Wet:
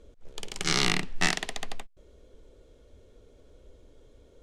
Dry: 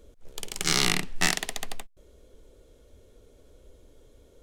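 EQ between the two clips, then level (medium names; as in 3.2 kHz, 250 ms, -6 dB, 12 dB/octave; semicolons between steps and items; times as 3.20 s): distance through air 57 m; 0.0 dB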